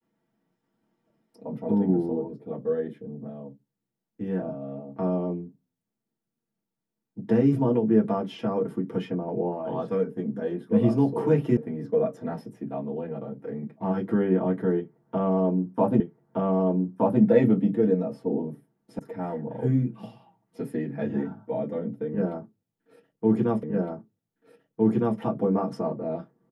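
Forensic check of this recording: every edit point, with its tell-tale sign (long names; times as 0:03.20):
0:11.57: cut off before it has died away
0:16.00: the same again, the last 1.22 s
0:18.99: cut off before it has died away
0:23.63: the same again, the last 1.56 s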